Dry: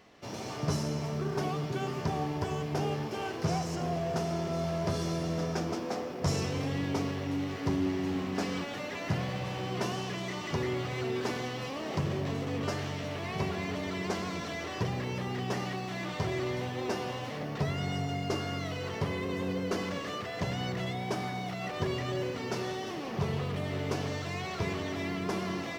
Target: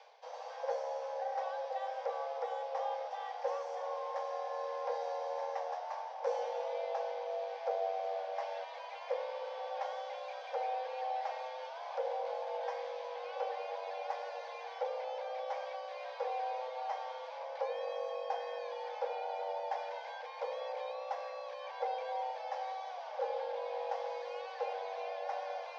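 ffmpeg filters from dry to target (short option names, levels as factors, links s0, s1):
-filter_complex "[0:a]afreqshift=390,areverse,acompressor=mode=upward:threshold=0.0141:ratio=2.5,areverse,highpass=420,equalizer=f=470:t=q:w=4:g=8,equalizer=f=800:t=q:w=4:g=7,equalizer=f=1300:t=q:w=4:g=-8,equalizer=f=2700:t=q:w=4:g=-4,equalizer=f=4900:t=q:w=4:g=3,lowpass=f=5500:w=0.5412,lowpass=f=5500:w=1.3066,acrossover=split=3300[s0][s1];[s1]acompressor=threshold=0.00224:ratio=4:attack=1:release=60[s2];[s0][s2]amix=inputs=2:normalize=0,volume=0.355"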